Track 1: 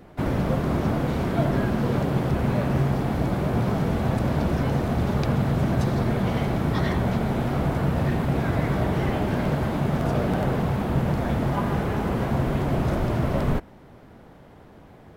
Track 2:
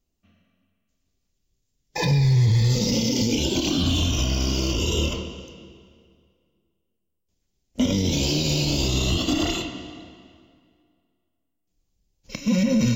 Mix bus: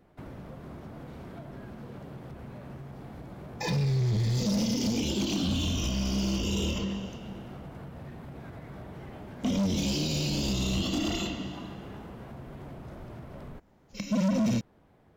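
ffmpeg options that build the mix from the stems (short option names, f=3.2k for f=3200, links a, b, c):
-filter_complex "[0:a]acompressor=threshold=-26dB:ratio=6,asoftclip=type=hard:threshold=-23dB,volume=-13.5dB[a];[1:a]equalizer=f=200:t=o:w=0.2:g=14.5,volume=16.5dB,asoftclip=hard,volume=-16.5dB,adelay=1650,volume=-4dB[b];[a][b]amix=inputs=2:normalize=0,alimiter=limit=-23dB:level=0:latency=1"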